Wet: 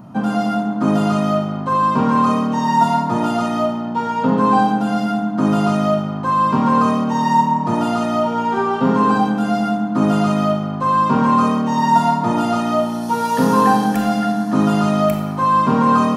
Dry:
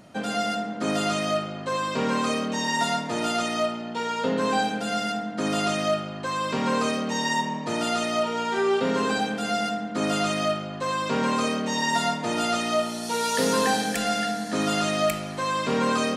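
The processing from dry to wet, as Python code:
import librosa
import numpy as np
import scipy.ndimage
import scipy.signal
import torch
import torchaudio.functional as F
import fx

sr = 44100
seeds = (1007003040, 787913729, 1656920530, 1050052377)

y = fx.graphic_eq(x, sr, hz=(125, 250, 500, 1000, 2000, 4000, 8000), db=(9, 6, -8, 10, -10, -8, -12))
y = fx.rev_schroeder(y, sr, rt60_s=0.66, comb_ms=28, drr_db=6.0)
y = y * 10.0 ** (6.0 / 20.0)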